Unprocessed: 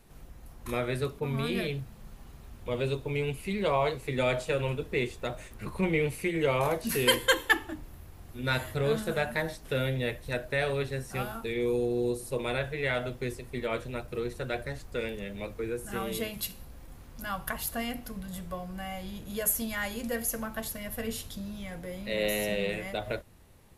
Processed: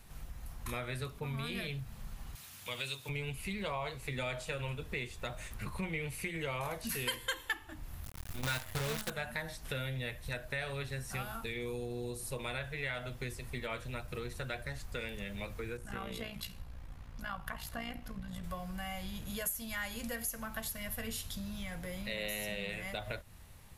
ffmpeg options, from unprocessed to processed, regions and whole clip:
ffmpeg -i in.wav -filter_complex "[0:a]asettb=1/sr,asplit=3[link_01][link_02][link_03];[link_01]atrim=end=2.354[link_04];[link_02]atrim=start=2.35:end=3.09,asetpts=PTS-STARTPTS,afade=type=in:duration=0.004:curve=qsin,afade=type=out:start_time=0.736:duration=0.004:curve=qsin,highpass=frequency=94:width=0.5412,highpass=frequency=94:width=1.3066,tiltshelf=frequency=1500:gain=-9.5[link_05];[link_03]atrim=start=3.086[link_06];[link_04][link_05]acrossfade=duration=0.004:curve1=hsin:curve2=qsin[link_07];[link_07][link_06]acrossfade=duration=0.004:curve1=qsin:curve2=hsin,asettb=1/sr,asplit=3[link_08][link_09][link_10];[link_08]atrim=end=8.044[link_11];[link_09]atrim=start=8.04:end=9.1,asetpts=PTS-STARTPTS,afade=type=in:duration=0.004:curve=qsin,afade=type=out:start_time=1.056:duration=0.004:curve=qsin,acontrast=42,acrusher=bits=5:dc=4:mix=0:aa=0.000001[link_12];[link_10]atrim=start=9.096[link_13];[link_11][link_12]acrossfade=duration=0.004:curve1=hsin:curve2=qsin[link_14];[link_14][link_13]acrossfade=duration=0.004:curve1=qsin:curve2=hsin,asettb=1/sr,asplit=3[link_15][link_16][link_17];[link_15]atrim=end=15.774[link_18];[link_16]atrim=start=15.77:end=18.44,asetpts=PTS-STARTPTS,afade=type=in:duration=0.004:curve=qsin,afade=type=out:start_time=2.666:duration=0.004:curve=qsin,tremolo=f=59:d=0.667,equalizer=frequency=13000:width_type=o:width=1.8:gain=-14[link_19];[link_17]atrim=start=18.436[link_20];[link_18][link_19]acrossfade=duration=0.004:curve1=hsin:curve2=qsin[link_21];[link_21][link_20]acrossfade=duration=0.004:curve1=qsin:curve2=hsin,equalizer=frequency=370:width_type=o:width=1.7:gain=-10,acompressor=threshold=-42dB:ratio=3,volume=4dB" out.wav

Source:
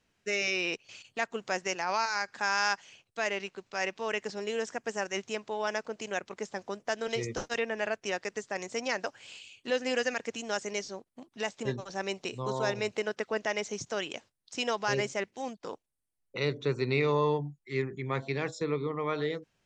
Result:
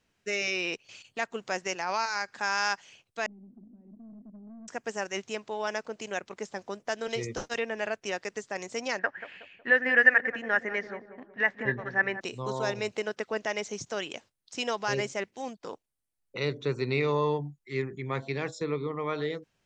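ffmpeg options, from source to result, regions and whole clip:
ffmpeg -i in.wav -filter_complex "[0:a]asettb=1/sr,asplit=3[link_01][link_02][link_03];[link_01]atrim=end=3.264[link_04];[link_02]atrim=start=3.26:end=4.68,asetpts=PTS-STARTPTS,afade=type=in:duration=0.004:curve=qsin,afade=type=out:start_time=1.416:duration=0.004:curve=qsin,aeval=exprs='val(0)+0.5*0.0237*sgn(val(0))':channel_layout=same,asuperpass=centerf=230:order=4:qfactor=4.1,aeval=exprs='(tanh(158*val(0)+0.15)-tanh(0.15))/158':channel_layout=same[link_05];[link_03]atrim=start=4.676[link_06];[link_04][link_05]acrossfade=duration=0.004:curve1=hsin:curve2=qsin[link_07];[link_07][link_06]acrossfade=duration=0.004:curve1=qsin:curve2=hsin,asettb=1/sr,asplit=3[link_08][link_09][link_10];[link_08]atrim=end=8.994[link_11];[link_09]atrim=start=8.99:end=12.21,asetpts=PTS-STARTPTS,afade=type=in:duration=0.004:curve=qsin,afade=type=out:start_time=3.216:duration=0.004:curve=qsin,lowpass=frequency=1800:width_type=q:width=8.5,asplit=2[link_12][link_13];[link_13]adelay=184,lowpass=frequency=990:poles=1,volume=-10dB,asplit=2[link_14][link_15];[link_15]adelay=184,lowpass=frequency=990:poles=1,volume=0.51,asplit=2[link_16][link_17];[link_17]adelay=184,lowpass=frequency=990:poles=1,volume=0.51,asplit=2[link_18][link_19];[link_19]adelay=184,lowpass=frequency=990:poles=1,volume=0.51,asplit=2[link_20][link_21];[link_21]adelay=184,lowpass=frequency=990:poles=1,volume=0.51,asplit=2[link_22][link_23];[link_23]adelay=184,lowpass=frequency=990:poles=1,volume=0.51[link_24];[link_12][link_14][link_16][link_18][link_20][link_22][link_24]amix=inputs=7:normalize=0,atrim=end_sample=142002[link_25];[link_10]atrim=start=12.206[link_26];[link_11][link_25]acrossfade=duration=0.004:curve1=hsin:curve2=qsin[link_27];[link_27][link_26]acrossfade=duration=0.004:curve1=qsin:curve2=hsin" out.wav

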